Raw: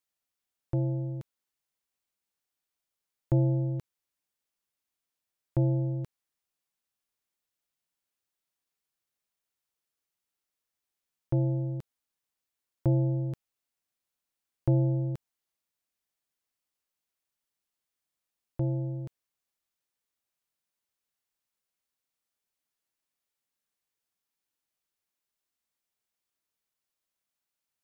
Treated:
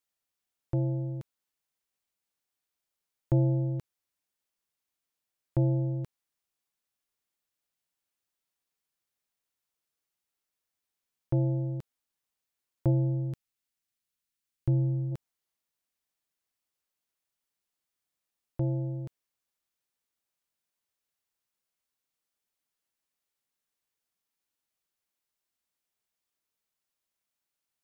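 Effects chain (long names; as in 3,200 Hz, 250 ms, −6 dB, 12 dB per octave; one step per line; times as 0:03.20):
0:12.90–0:15.11: parametric band 670 Hz −3.5 dB → −13 dB 1.8 octaves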